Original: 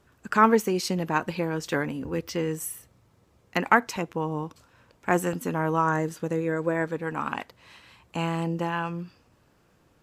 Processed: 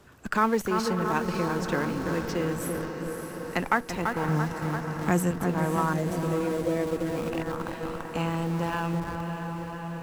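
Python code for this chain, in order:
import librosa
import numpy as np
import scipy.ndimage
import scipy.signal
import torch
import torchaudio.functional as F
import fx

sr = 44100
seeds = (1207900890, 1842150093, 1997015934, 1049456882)

p1 = fx.bass_treble(x, sr, bass_db=13, treble_db=8, at=(4.28, 5.31))
p2 = fx.echo_bbd(p1, sr, ms=337, stages=4096, feedback_pct=65, wet_db=-7.5)
p3 = fx.schmitt(p2, sr, flips_db=-29.5)
p4 = p2 + F.gain(torch.from_numpy(p3), -10.0).numpy()
p5 = fx.band_shelf(p4, sr, hz=1200.0, db=-14.0, octaves=1.2, at=(5.93, 7.41))
p6 = fx.echo_diffused(p5, sr, ms=538, feedback_pct=61, wet_db=-11.0)
p7 = fx.band_squash(p6, sr, depth_pct=40)
y = F.gain(torch.from_numpy(p7), -4.0).numpy()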